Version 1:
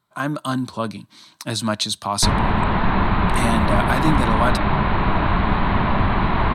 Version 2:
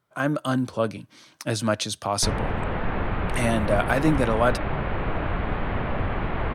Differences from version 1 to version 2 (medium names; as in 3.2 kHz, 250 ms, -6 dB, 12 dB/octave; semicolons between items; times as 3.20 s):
background -7.0 dB; master: add graphic EQ with 31 bands 200 Hz -6 dB, 500 Hz +9 dB, 1 kHz -8 dB, 4 kHz -11 dB, 8 kHz -6 dB, 12.5 kHz -6 dB